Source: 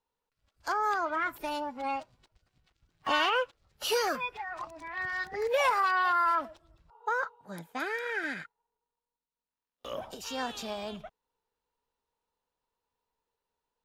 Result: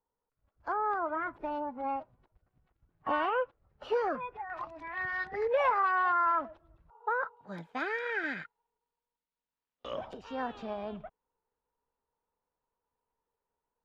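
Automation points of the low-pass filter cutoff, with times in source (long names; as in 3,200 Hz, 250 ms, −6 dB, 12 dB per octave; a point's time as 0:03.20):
1,200 Hz
from 0:04.50 2,800 Hz
from 0:05.45 1,700 Hz
from 0:07.37 3,600 Hz
from 0:10.13 1,600 Hz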